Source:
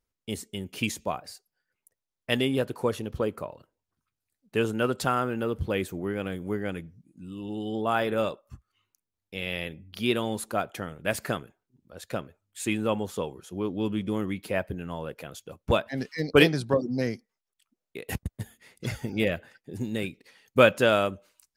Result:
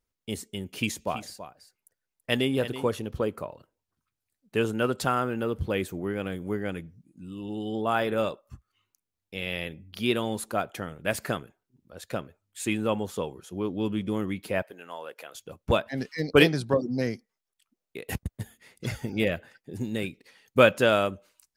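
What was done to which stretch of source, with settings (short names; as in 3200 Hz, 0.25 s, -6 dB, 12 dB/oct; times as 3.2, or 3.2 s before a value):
0.74–2.87 echo 0.33 s -12 dB
14.62–15.35 HPF 560 Hz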